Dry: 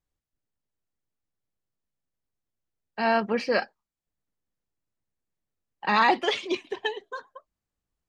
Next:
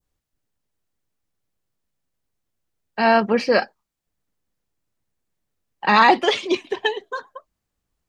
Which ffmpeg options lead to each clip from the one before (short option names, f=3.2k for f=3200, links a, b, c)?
-af "adynamicequalizer=threshold=0.0141:dfrequency=2200:dqfactor=0.79:tfrequency=2200:tqfactor=0.79:attack=5:release=100:ratio=0.375:range=2:mode=cutabove:tftype=bell,volume=7.5dB"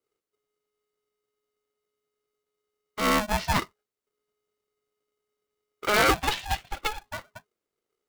-af "aeval=exprs='val(0)*sgn(sin(2*PI*420*n/s))':c=same,volume=-7.5dB"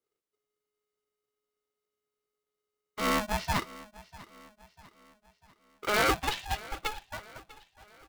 -af "aecho=1:1:646|1292|1938|2584:0.106|0.0508|0.0244|0.0117,volume=-4.5dB"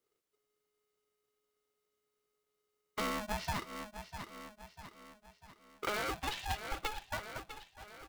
-filter_complex "[0:a]asplit=2[a][b];[b]asoftclip=type=tanh:threshold=-25.5dB,volume=-3.5dB[c];[a][c]amix=inputs=2:normalize=0,acompressor=threshold=-32dB:ratio=16,volume=-1dB"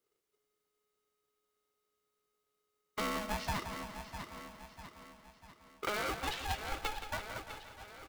-af "aecho=1:1:173|346|519|692|865|1038|1211:0.316|0.187|0.11|0.0649|0.0383|0.0226|0.0133"